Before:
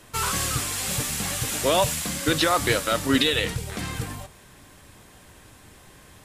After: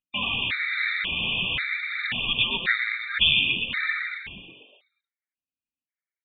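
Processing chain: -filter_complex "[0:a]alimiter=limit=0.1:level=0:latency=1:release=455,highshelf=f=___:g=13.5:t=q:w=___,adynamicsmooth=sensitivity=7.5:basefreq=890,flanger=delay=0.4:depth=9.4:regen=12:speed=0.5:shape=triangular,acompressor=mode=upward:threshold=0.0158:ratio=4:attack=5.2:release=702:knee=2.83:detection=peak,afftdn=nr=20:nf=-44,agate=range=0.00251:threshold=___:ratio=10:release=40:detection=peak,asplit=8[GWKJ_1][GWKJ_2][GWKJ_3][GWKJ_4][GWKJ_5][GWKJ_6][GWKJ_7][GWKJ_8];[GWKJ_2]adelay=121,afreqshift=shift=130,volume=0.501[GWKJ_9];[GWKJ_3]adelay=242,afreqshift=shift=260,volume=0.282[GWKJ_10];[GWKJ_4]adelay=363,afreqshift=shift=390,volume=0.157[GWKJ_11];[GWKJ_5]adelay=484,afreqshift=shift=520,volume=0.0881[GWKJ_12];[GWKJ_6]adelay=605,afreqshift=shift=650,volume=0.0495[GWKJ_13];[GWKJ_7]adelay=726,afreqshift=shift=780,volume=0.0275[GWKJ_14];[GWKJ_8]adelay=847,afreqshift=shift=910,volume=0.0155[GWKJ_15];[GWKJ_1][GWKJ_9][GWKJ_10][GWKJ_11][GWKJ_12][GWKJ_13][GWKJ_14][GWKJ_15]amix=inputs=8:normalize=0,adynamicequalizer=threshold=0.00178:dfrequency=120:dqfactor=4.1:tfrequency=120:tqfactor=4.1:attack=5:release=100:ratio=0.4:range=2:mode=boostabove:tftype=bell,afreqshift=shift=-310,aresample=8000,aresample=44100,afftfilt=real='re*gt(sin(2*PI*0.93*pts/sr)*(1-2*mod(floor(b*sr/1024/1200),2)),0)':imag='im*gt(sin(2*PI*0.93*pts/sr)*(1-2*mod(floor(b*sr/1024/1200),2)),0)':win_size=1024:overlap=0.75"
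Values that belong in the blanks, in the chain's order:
1600, 3, 0.0141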